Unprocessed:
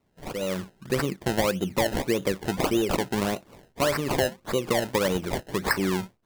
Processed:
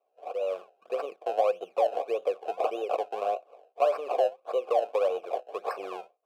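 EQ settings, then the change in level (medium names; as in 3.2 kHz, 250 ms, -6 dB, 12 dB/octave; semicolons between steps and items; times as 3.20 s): vowel filter a; resonant high-pass 480 Hz, resonance Q 4.9; treble shelf 8 kHz +8.5 dB; +2.0 dB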